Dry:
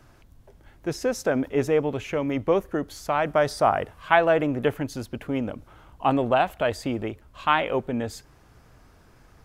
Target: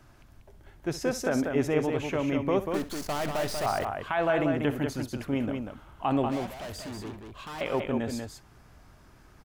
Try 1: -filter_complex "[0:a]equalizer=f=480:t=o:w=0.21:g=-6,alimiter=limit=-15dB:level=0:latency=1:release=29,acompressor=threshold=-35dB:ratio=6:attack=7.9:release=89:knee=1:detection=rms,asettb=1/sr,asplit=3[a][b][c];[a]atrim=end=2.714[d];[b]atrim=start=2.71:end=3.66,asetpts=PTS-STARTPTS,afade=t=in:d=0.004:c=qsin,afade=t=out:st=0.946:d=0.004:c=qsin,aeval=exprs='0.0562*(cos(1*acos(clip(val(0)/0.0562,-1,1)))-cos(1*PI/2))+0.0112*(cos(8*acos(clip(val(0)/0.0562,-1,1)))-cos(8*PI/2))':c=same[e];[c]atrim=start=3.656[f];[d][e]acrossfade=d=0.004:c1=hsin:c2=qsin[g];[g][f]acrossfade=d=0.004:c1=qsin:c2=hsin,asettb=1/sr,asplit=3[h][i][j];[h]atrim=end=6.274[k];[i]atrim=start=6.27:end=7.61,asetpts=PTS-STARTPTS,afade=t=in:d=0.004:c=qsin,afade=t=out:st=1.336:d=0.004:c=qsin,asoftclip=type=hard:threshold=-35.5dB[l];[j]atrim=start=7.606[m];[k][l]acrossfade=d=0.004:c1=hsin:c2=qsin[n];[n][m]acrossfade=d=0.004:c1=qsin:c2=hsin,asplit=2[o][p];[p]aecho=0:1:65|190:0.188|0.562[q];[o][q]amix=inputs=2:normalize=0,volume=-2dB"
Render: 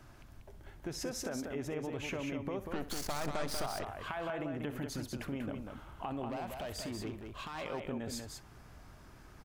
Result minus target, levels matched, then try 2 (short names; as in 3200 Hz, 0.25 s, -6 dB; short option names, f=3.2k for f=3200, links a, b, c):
compressor: peak gain reduction +14.5 dB
-filter_complex "[0:a]equalizer=f=480:t=o:w=0.21:g=-6,alimiter=limit=-15dB:level=0:latency=1:release=29,asettb=1/sr,asplit=3[a][b][c];[a]atrim=end=2.714[d];[b]atrim=start=2.71:end=3.66,asetpts=PTS-STARTPTS,afade=t=in:d=0.004:c=qsin,afade=t=out:st=0.946:d=0.004:c=qsin,aeval=exprs='0.0562*(cos(1*acos(clip(val(0)/0.0562,-1,1)))-cos(1*PI/2))+0.0112*(cos(8*acos(clip(val(0)/0.0562,-1,1)))-cos(8*PI/2))':c=same[e];[c]atrim=start=3.656[f];[d][e]acrossfade=d=0.004:c1=hsin:c2=qsin[g];[g][f]acrossfade=d=0.004:c1=qsin:c2=hsin,asettb=1/sr,asplit=3[h][i][j];[h]atrim=end=6.274[k];[i]atrim=start=6.27:end=7.61,asetpts=PTS-STARTPTS,afade=t=in:d=0.004:c=qsin,afade=t=out:st=1.336:d=0.004:c=qsin,asoftclip=type=hard:threshold=-35.5dB[l];[j]atrim=start=7.606[m];[k][l]acrossfade=d=0.004:c1=hsin:c2=qsin[n];[n][m]acrossfade=d=0.004:c1=qsin:c2=hsin,asplit=2[o][p];[p]aecho=0:1:65|190:0.188|0.562[q];[o][q]amix=inputs=2:normalize=0,volume=-2dB"